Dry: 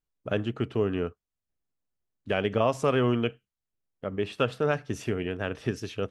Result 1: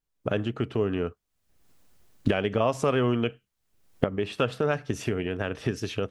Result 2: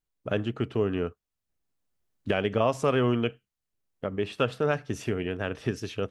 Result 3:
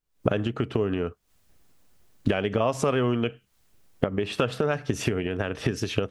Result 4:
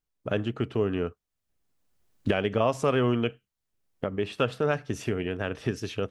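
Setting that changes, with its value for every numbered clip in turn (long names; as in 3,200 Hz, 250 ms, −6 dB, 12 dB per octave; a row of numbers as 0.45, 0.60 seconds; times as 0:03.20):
camcorder AGC, rising by: 36, 5.7, 91, 14 dB per second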